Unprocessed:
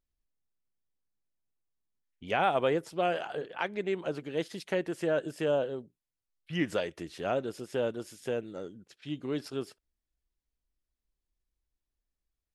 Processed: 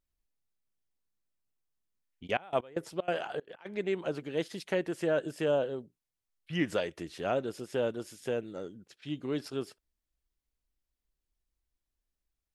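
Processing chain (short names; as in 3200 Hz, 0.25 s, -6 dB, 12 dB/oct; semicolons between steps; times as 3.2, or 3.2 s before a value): 2.26–3.65 step gate "..x..xxx.xxxx.x" 190 bpm -24 dB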